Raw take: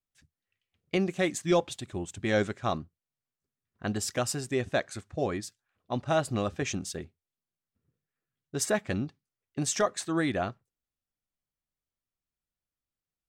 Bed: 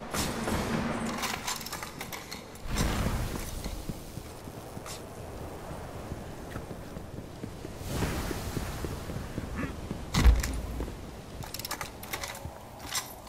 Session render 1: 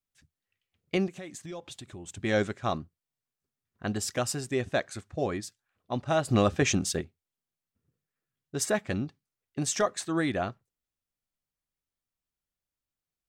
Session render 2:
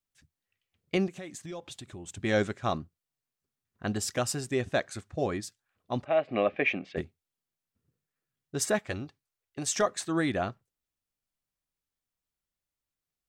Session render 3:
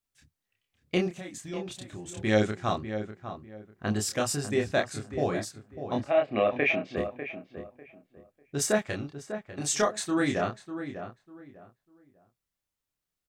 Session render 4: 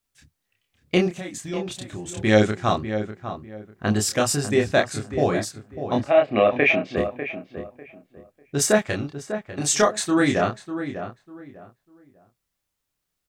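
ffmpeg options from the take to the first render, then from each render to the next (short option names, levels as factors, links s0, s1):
-filter_complex "[0:a]asettb=1/sr,asplit=3[s0][s1][s2];[s0]atrim=end=1.074[s3];[s1]atrim=start=1.07:end=2.06,asetpts=PTS-STARTPTS,afade=t=in:d=0.004:c=qsin,afade=t=out:st=0.986:d=0.004:c=qsin,acompressor=threshold=0.01:ratio=4:attack=3.2:release=140:knee=1:detection=peak[s4];[s2]atrim=start=2.056[s5];[s3][s4]acrossfade=d=0.004:c1=hsin:c2=qsin[s6];[s6][s5]acrossfade=d=0.004:c1=qsin:c2=hsin,asplit=3[s7][s8][s9];[s7]afade=t=out:st=6.28:d=0.02[s10];[s8]acontrast=76,afade=t=in:st=6.28:d=0.02,afade=t=out:st=7:d=0.02[s11];[s9]afade=t=in:st=7:d=0.02[s12];[s10][s11][s12]amix=inputs=3:normalize=0"
-filter_complex "[0:a]asplit=3[s0][s1][s2];[s0]afade=t=out:st=6.04:d=0.02[s3];[s1]highpass=350,equalizer=f=370:t=q:w=4:g=-4,equalizer=f=630:t=q:w=4:g=4,equalizer=f=920:t=q:w=4:g=-8,equalizer=f=1400:t=q:w=4:g=-9,equalizer=f=2300:t=q:w=4:g=9,lowpass=f=2600:w=0.5412,lowpass=f=2600:w=1.3066,afade=t=in:st=6.04:d=0.02,afade=t=out:st=6.96:d=0.02[s4];[s2]afade=t=in:st=6.96:d=0.02[s5];[s3][s4][s5]amix=inputs=3:normalize=0,asettb=1/sr,asplit=3[s6][s7][s8];[s6]atrim=end=8.794[s9];[s7]atrim=start=8.79:end=9.76,asetpts=PTS-STARTPTS,afade=t=in:d=0.004:c=qsin,afade=t=out:st=0.966:d=0.004:c=qsin,equalizer=f=190:t=o:w=1.2:g=-10.5[s10];[s8]atrim=start=9.756[s11];[s9][s10]acrossfade=d=0.004:c1=hsin:c2=qsin[s12];[s12][s11]acrossfade=d=0.004:c1=qsin:c2=hsin"
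-filter_complex "[0:a]asplit=2[s0][s1];[s1]adelay=28,volume=0.708[s2];[s0][s2]amix=inputs=2:normalize=0,asplit=2[s3][s4];[s4]adelay=597,lowpass=f=1800:p=1,volume=0.335,asplit=2[s5][s6];[s6]adelay=597,lowpass=f=1800:p=1,volume=0.25,asplit=2[s7][s8];[s8]adelay=597,lowpass=f=1800:p=1,volume=0.25[s9];[s3][s5][s7][s9]amix=inputs=4:normalize=0"
-af "volume=2.24"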